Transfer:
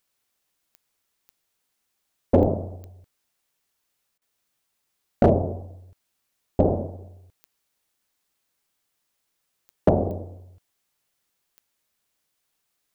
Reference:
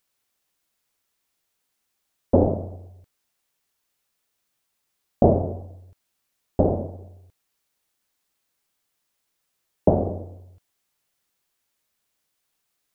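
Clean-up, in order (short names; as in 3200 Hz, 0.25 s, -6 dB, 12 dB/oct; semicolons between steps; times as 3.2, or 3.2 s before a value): clip repair -7 dBFS; de-click; interpolate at 4.18, 35 ms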